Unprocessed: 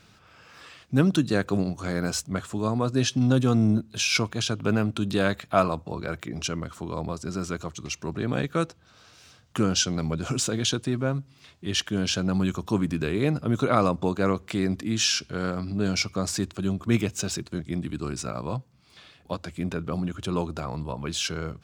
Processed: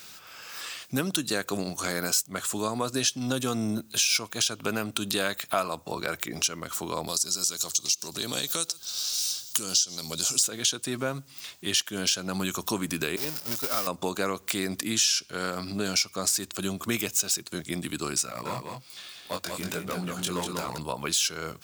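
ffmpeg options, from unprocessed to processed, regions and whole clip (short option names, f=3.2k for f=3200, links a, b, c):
-filter_complex "[0:a]asettb=1/sr,asplit=3[a][b][c];[a]atrim=end=7.074[d];[b]atrim=start=7.07:end=10.43,asetpts=PTS-STARTPTS,afade=t=in:d=0.004:c=qsin,afade=t=out:st=3.356:d=0.004:c=qsin,highshelf=f=3k:t=q:w=1.5:g=13,acompressor=threshold=-32dB:ratio=2:attack=3.2:release=140:knee=1:detection=peak,aecho=1:1:134:0.0668,atrim=end_sample=148176[e];[c]atrim=start=10.426[f];[d][e]acrossfade=d=0.004:c1=hsin:c2=qsin[g];[g][f]acrossfade=d=0.004:c1=qsin:c2=hsin,asettb=1/sr,asplit=3[h][i][j];[h]atrim=end=13.164[k];[i]atrim=start=13.16:end=13.87,asetpts=PTS-STARTPTS,afade=t=in:d=0.004:c=qsin,afade=t=out:st=0.706:d=0.004:c=qsin,aeval=exprs='val(0)+0.5*0.0944*sgn(val(0))':c=same,agate=range=-33dB:threshold=-11dB:ratio=3:release=100:detection=peak,equalizer=f=5.2k:t=o:w=0.36:g=10[l];[j]atrim=start=13.866[m];[k][l]acrossfade=d=0.004:c1=hsin:c2=qsin[n];[n][m]acrossfade=d=0.004:c1=qsin:c2=hsin,asettb=1/sr,asplit=3[o][p][q];[o]atrim=end=18.264[r];[p]atrim=start=18.26:end=20.78,asetpts=PTS-STARTPTS,afade=t=in:d=0.004:c=qsin,afade=t=out:st=2.516:d=0.004:c=qsin,aeval=exprs='clip(val(0),-1,0.0631)':c=same,flanger=delay=15.5:depth=7.5:speed=1.2,aecho=1:1:191:0.562,atrim=end_sample=111132[s];[q]atrim=start=20.776[t];[r][s]acrossfade=d=0.004:c1=hsin:c2=qsin[u];[u][t]acrossfade=d=0.004:c1=qsin:c2=hsin,aemphasis=mode=production:type=riaa,acompressor=threshold=-31dB:ratio=3,volume=5dB"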